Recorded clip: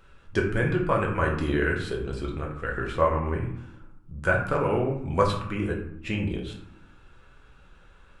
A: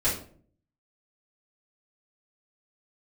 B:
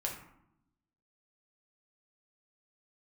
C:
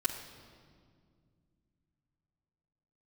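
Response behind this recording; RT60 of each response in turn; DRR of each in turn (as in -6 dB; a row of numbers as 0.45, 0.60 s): B; 0.50, 0.75, 2.1 s; -11.5, -1.5, -7.0 dB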